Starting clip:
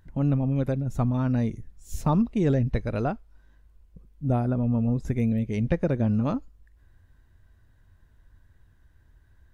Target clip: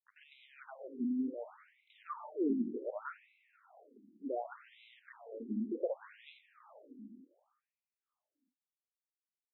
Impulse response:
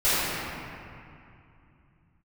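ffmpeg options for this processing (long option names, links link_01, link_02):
-filter_complex "[0:a]aeval=exprs='val(0)*gte(abs(val(0)),0.0119)':channel_layout=same,asplit=2[link_01][link_02];[1:a]atrim=start_sample=2205[link_03];[link_02][link_03]afir=irnorm=-1:irlink=0,volume=-27.5dB[link_04];[link_01][link_04]amix=inputs=2:normalize=0,afftfilt=real='re*between(b*sr/1024,260*pow(2900/260,0.5+0.5*sin(2*PI*0.67*pts/sr))/1.41,260*pow(2900/260,0.5+0.5*sin(2*PI*0.67*pts/sr))*1.41)':imag='im*between(b*sr/1024,260*pow(2900/260,0.5+0.5*sin(2*PI*0.67*pts/sr))/1.41,260*pow(2900/260,0.5+0.5*sin(2*PI*0.67*pts/sr))*1.41)':win_size=1024:overlap=0.75,volume=-5.5dB"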